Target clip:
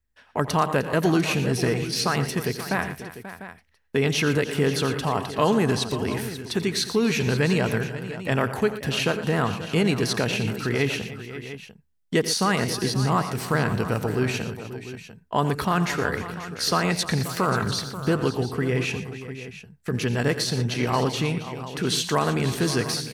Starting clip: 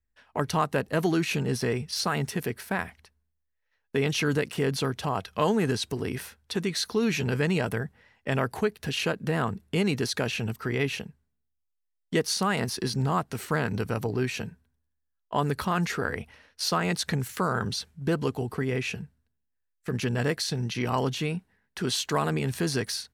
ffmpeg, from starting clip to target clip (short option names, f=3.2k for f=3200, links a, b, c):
-af "aecho=1:1:86|118|305|535|697:0.178|0.211|0.15|0.211|0.2,volume=3.5dB"